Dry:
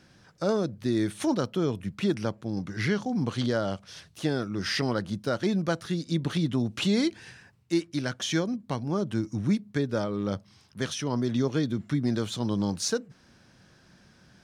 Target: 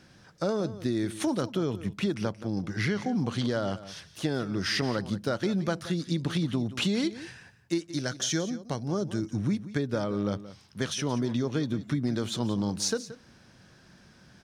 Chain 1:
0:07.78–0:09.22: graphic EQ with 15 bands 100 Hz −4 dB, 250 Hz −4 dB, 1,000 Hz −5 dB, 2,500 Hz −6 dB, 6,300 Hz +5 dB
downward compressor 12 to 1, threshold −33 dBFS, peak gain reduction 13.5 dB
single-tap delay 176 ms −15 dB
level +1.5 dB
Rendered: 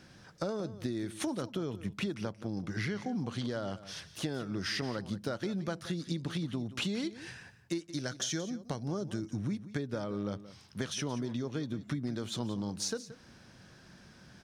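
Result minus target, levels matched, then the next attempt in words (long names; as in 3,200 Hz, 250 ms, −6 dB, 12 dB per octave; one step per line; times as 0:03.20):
downward compressor: peak gain reduction +7.5 dB
0:07.78–0:09.22: graphic EQ with 15 bands 100 Hz −4 dB, 250 Hz −4 dB, 1,000 Hz −5 dB, 2,500 Hz −6 dB, 6,300 Hz +5 dB
downward compressor 12 to 1, threshold −25 dBFS, peak gain reduction 6 dB
single-tap delay 176 ms −15 dB
level +1.5 dB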